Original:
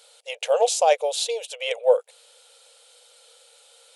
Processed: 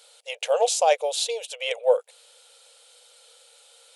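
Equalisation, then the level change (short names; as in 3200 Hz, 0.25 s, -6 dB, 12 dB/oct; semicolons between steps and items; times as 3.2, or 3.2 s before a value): low shelf 430 Hz -4.5 dB; 0.0 dB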